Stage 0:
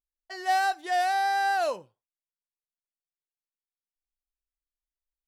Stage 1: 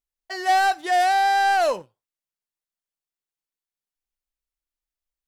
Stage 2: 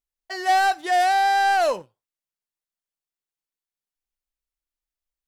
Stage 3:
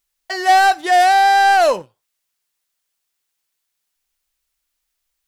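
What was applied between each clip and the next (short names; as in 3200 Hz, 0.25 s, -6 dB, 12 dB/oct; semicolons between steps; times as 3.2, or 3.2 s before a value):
sample leveller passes 1; gain +4 dB
nothing audible
mismatched tape noise reduction encoder only; gain +7 dB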